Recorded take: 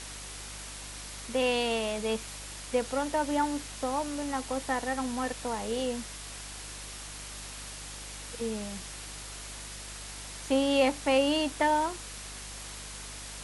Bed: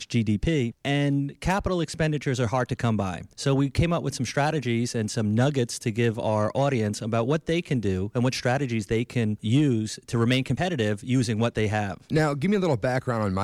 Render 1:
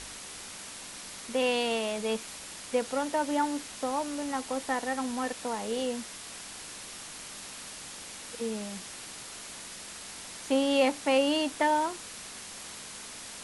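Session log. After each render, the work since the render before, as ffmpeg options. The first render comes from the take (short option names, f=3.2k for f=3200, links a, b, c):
-af "bandreject=f=50:t=h:w=4,bandreject=f=100:t=h:w=4,bandreject=f=150:t=h:w=4"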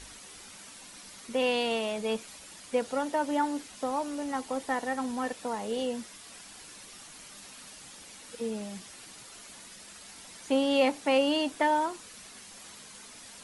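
-af "afftdn=nr=8:nf=-44"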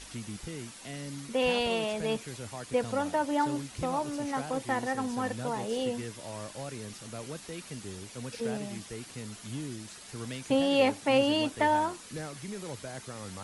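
-filter_complex "[1:a]volume=-17dB[a];[0:a][a]amix=inputs=2:normalize=0"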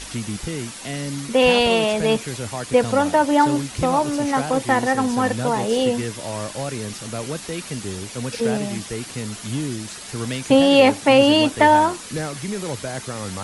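-af "volume=12dB,alimiter=limit=-3dB:level=0:latency=1"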